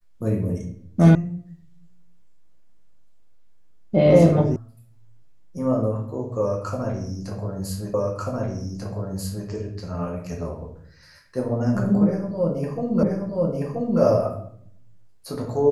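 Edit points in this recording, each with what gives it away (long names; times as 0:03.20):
0:01.15: cut off before it has died away
0:04.56: cut off before it has died away
0:07.94: the same again, the last 1.54 s
0:13.03: the same again, the last 0.98 s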